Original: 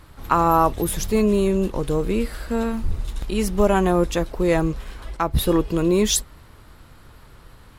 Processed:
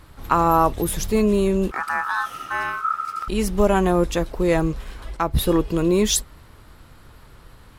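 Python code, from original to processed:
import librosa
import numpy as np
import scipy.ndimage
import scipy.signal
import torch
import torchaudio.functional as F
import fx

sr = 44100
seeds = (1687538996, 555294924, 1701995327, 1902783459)

y = fx.ring_mod(x, sr, carrier_hz=1300.0, at=(1.71, 3.28))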